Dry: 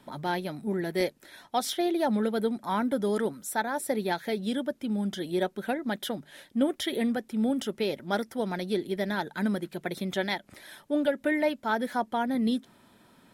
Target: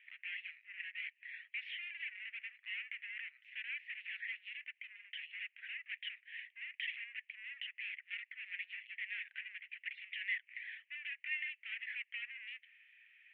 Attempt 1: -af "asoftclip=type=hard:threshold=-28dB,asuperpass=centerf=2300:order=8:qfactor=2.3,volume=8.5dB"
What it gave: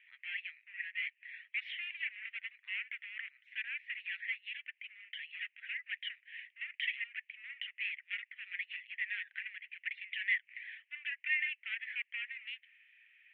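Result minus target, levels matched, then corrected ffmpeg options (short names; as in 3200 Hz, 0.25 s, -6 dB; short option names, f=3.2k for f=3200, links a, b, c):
hard clip: distortion -5 dB
-af "asoftclip=type=hard:threshold=-36dB,asuperpass=centerf=2300:order=8:qfactor=2.3,volume=8.5dB"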